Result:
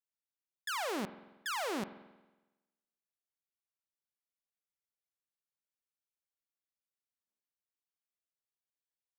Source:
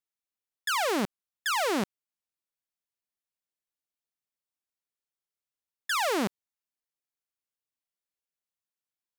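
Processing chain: spring tank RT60 1.1 s, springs 46 ms, chirp 55 ms, DRR 13 dB; spectral freeze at 3.47 s, 3.80 s; trim -9 dB

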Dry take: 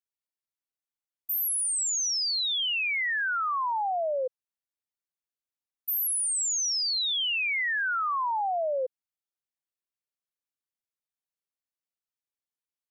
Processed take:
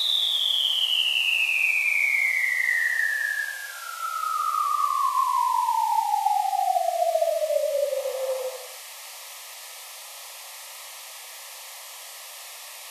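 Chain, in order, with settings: spectral levelling over time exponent 0.4; high-pass 520 Hz 24 dB/octave; Paulstretch 4.6×, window 0.25 s, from 7.06 s; Butterworth band-stop 1.5 kHz, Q 3.8; trim +3 dB

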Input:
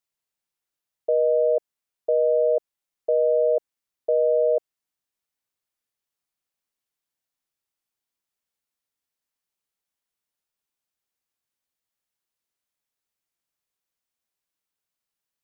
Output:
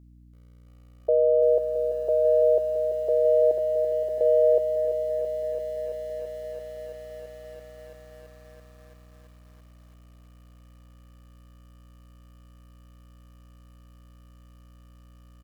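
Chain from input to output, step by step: feedback delay 451 ms, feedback 30%, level -21.5 dB; 3.51–4.21 s: compressor with a negative ratio -28 dBFS, ratio -0.5; hum 60 Hz, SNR 23 dB; bit-crushed delay 335 ms, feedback 80%, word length 9-bit, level -8.5 dB

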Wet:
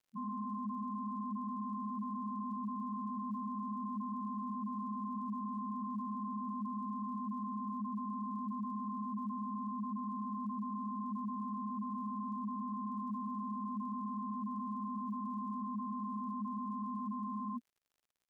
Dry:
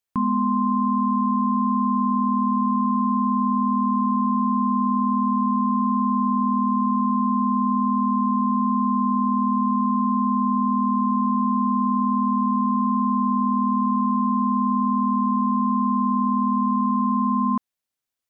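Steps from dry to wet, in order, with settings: loudest bins only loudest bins 1; crackle 92 per s -56 dBFS; trim -6.5 dB

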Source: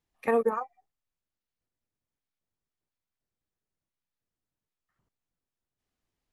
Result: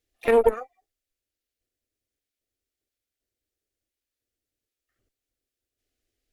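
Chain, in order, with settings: static phaser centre 400 Hz, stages 4; Chebyshev shaper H 2 -10 dB, 7 -32 dB, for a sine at -16 dBFS; harmony voices +7 st -17 dB; trim +7.5 dB

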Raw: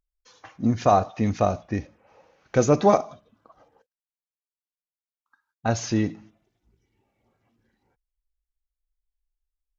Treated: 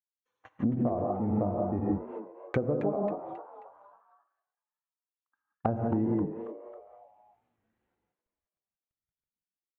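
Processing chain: companding laws mixed up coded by A; boxcar filter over 9 samples; gated-style reverb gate 210 ms rising, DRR 0.5 dB; level rider gain up to 15 dB; gate -45 dBFS, range -18 dB; bass shelf 190 Hz -5 dB; compression 12:1, threshold -24 dBFS, peak gain reduction 16 dB; low-pass that closes with the level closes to 620 Hz, closed at -26 dBFS; frequency-shifting echo 270 ms, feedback 42%, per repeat +130 Hz, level -12 dB; warped record 45 rpm, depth 100 cents

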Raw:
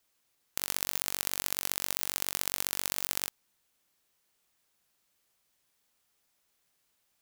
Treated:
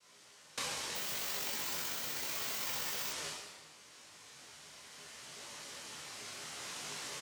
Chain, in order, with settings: recorder AGC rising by 5.4 dB/s; low-pass that closes with the level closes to 690 Hz, closed at -43 dBFS; treble shelf 2.2 kHz +11.5 dB; comb 6 ms, depth 98%; noise-vocoded speech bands 1; reverberation RT60 1.4 s, pre-delay 7 ms, DRR -5.5 dB; 0.95–3.11 s: careless resampling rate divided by 2×, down none, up zero stuff; detune thickener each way 25 cents

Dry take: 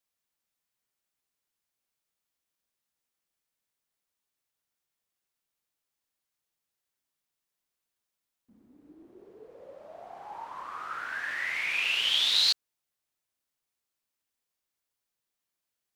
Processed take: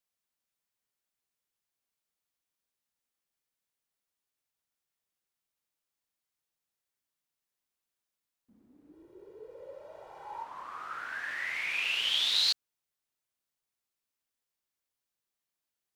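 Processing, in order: 8.93–10.43 s: comb 2.1 ms, depth 93%; trim -3 dB

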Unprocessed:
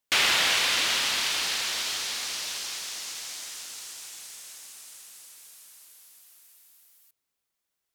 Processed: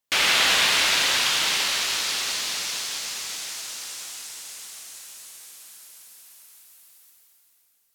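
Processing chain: plate-style reverb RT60 3.8 s, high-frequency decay 0.95×, DRR -2.5 dB

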